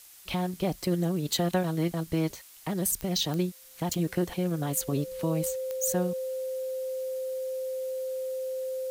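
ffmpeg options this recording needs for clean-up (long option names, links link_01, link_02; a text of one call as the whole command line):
ffmpeg -i in.wav -af "adeclick=threshold=4,bandreject=frequency=520:width=30,afftdn=noise_reduction=25:noise_floor=-50" out.wav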